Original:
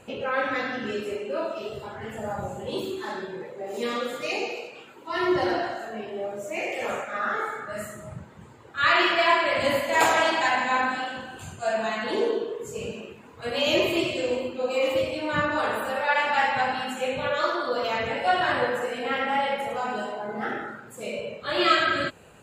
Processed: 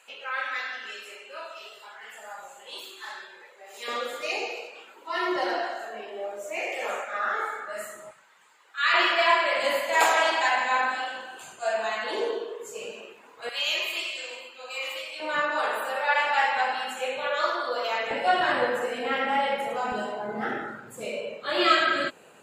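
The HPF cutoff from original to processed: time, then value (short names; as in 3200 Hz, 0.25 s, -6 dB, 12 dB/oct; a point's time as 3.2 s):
1300 Hz
from 3.88 s 490 Hz
from 8.11 s 1400 Hz
from 8.94 s 500 Hz
from 13.49 s 1400 Hz
from 15.2 s 520 Hz
from 18.11 s 190 Hz
from 19.92 s 78 Hz
from 21.05 s 260 Hz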